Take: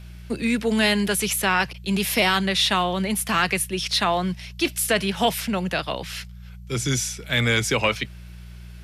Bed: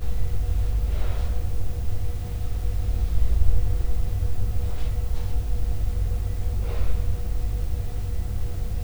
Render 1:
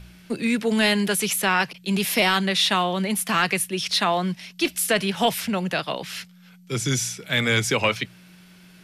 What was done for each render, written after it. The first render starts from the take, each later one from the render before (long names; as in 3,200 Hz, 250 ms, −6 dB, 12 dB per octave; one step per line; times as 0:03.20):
hum removal 60 Hz, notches 2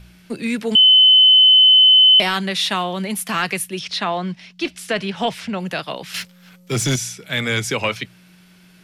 0:00.75–0:02.20: beep over 3,040 Hz −7 dBFS
0:03.79–0:05.60: high-frequency loss of the air 79 metres
0:06.14–0:06.96: leveller curve on the samples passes 2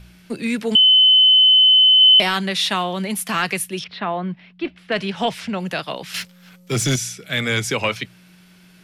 0:00.77–0:02.01: high-frequency loss of the air 85 metres
0:03.84–0:04.92: high-frequency loss of the air 420 metres
0:06.75–0:07.48: notch filter 920 Hz, Q 5.9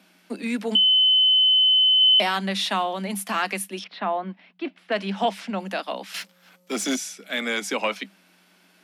Chebyshev high-pass with heavy ripple 190 Hz, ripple 6 dB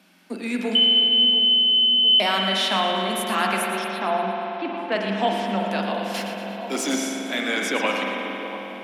echo with a time of its own for lows and highs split 1,100 Hz, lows 696 ms, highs 116 ms, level −10 dB
spring reverb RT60 3.8 s, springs 45 ms, chirp 70 ms, DRR 0 dB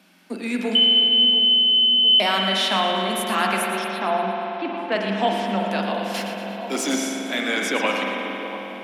level +1 dB